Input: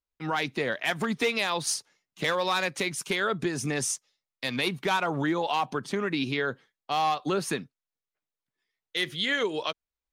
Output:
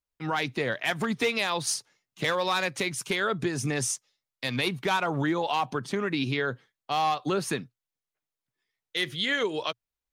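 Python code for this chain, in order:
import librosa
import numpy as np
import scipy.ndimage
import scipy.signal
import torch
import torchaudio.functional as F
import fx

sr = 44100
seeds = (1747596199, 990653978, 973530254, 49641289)

y = fx.peak_eq(x, sr, hz=120.0, db=7.5, octaves=0.35)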